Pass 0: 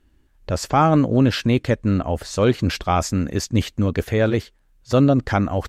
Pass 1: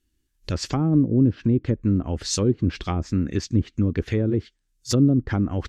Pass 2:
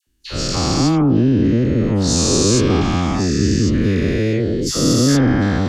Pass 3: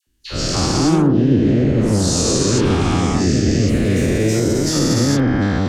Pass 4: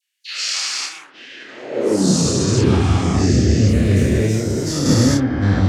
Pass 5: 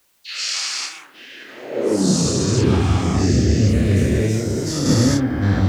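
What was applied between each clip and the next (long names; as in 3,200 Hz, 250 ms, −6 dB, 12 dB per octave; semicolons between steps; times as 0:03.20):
noise reduction from a noise print of the clip's start 12 dB; treble cut that deepens with the level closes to 470 Hz, closed at −13.5 dBFS; drawn EQ curve 240 Hz 0 dB, 340 Hz +2 dB, 630 Hz −11 dB, 5,900 Hz +13 dB; level −1.5 dB
every bin's largest magnitude spread in time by 480 ms; all-pass dispersion lows, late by 72 ms, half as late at 1,200 Hz
brickwall limiter −8 dBFS, peak gain reduction 4.5 dB; delay with pitch and tempo change per echo 130 ms, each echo +2 semitones, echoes 3, each echo −6 dB
high-pass filter sweep 2,200 Hz → 80 Hz, 0:01.33–0:02.38; sample-and-hold tremolo; multi-voice chorus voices 4, 1.5 Hz, delay 29 ms, depth 3 ms; level +3.5 dB
bit-depth reduction 10 bits, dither triangular; level −1.5 dB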